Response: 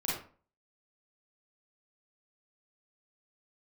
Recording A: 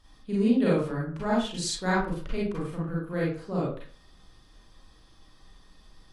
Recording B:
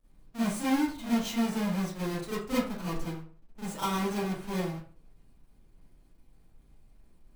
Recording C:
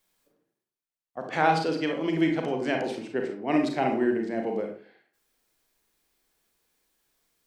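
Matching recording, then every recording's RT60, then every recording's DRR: A; 0.40, 0.40, 0.40 seconds; −7.0, −12.0, 2.5 decibels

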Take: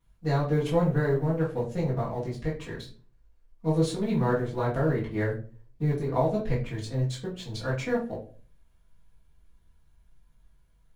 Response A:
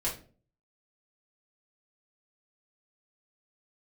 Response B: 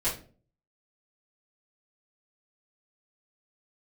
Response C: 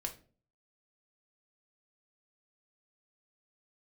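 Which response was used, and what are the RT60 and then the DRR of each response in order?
B; 0.40, 0.40, 0.40 seconds; −6.5, −12.0, 3.0 decibels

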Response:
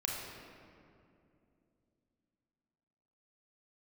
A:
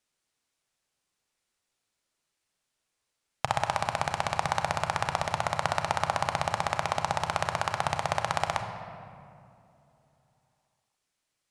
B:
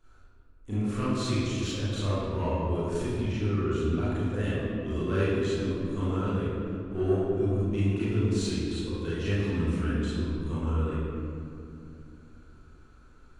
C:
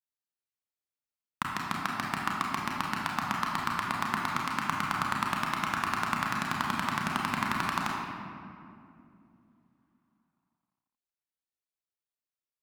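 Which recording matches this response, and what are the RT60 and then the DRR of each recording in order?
C; 2.7, 2.6, 2.6 seconds; 6.0, −11.5, −2.5 decibels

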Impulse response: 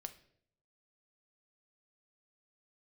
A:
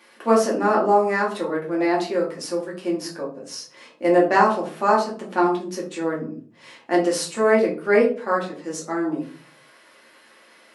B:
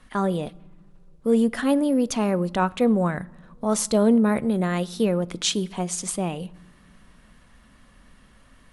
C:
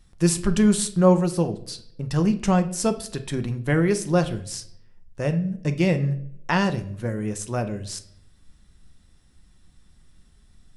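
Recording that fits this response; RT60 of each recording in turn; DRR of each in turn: C; 0.45 s, non-exponential decay, 0.65 s; −4.0, 16.5, 8.0 decibels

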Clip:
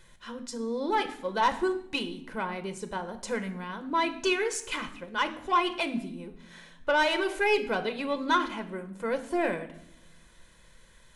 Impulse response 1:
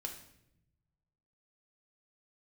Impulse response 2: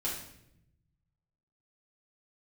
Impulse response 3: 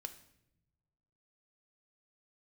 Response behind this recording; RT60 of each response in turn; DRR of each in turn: 3; 0.80, 0.75, 0.85 seconds; 2.0, −7.5, 8.0 decibels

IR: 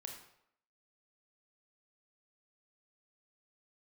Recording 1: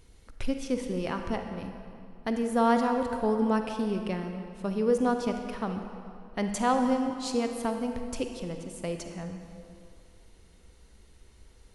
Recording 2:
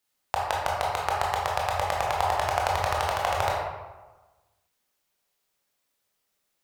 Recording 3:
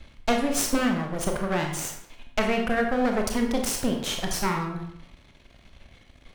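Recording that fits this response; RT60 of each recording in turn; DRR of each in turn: 3; 2.5, 1.3, 0.75 seconds; 5.5, −3.5, 2.0 decibels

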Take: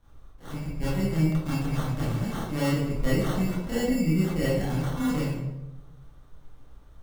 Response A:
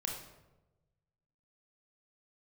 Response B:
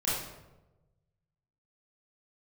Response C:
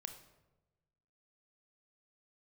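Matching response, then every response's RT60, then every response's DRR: B; 1.1, 1.1, 1.1 seconds; 0.0, −9.5, 6.5 decibels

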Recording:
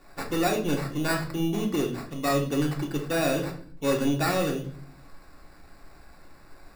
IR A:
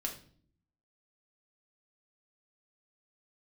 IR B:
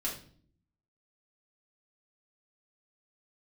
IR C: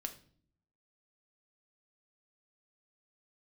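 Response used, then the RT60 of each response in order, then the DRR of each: A; 0.50, 0.50, 0.50 seconds; 0.0, −5.5, 5.5 decibels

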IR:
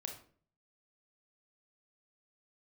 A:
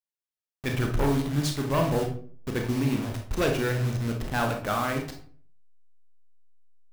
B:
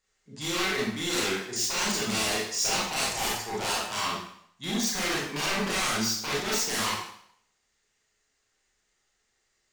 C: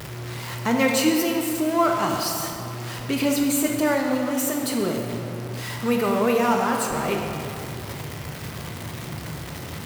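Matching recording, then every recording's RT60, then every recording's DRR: A; 0.50, 0.70, 2.7 seconds; 2.5, −6.5, 1.0 decibels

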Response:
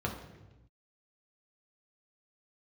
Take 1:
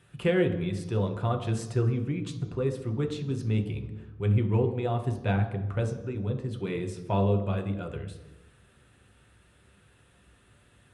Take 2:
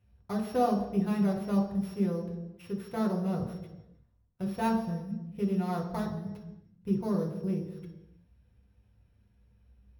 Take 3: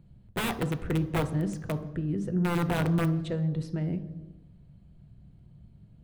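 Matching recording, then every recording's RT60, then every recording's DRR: 2; 1.0, 1.0, 1.0 seconds; 3.0, −1.5, 7.5 decibels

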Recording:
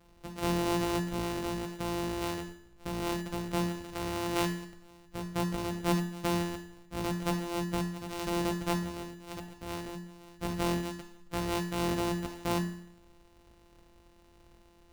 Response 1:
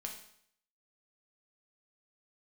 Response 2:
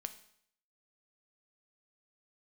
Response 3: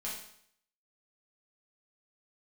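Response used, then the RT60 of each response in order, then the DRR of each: 1; 0.65, 0.65, 0.65 seconds; 1.0, 9.0, −6.5 decibels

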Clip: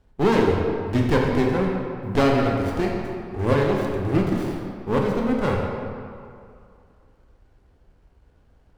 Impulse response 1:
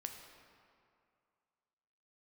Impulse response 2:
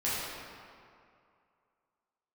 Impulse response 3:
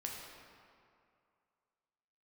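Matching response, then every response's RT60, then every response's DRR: 3; 2.4, 2.4, 2.4 seconds; 4.0, −10.0, −1.5 decibels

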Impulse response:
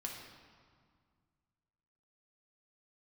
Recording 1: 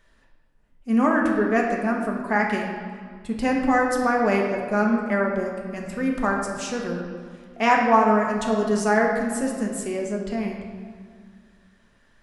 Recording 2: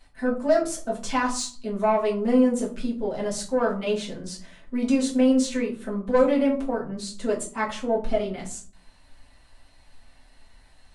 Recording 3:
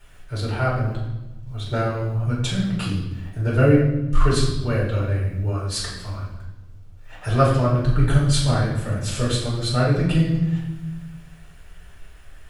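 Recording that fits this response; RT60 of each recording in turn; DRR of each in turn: 1; 2.0, 0.45, 1.0 seconds; −0.5, −5.0, −7.0 decibels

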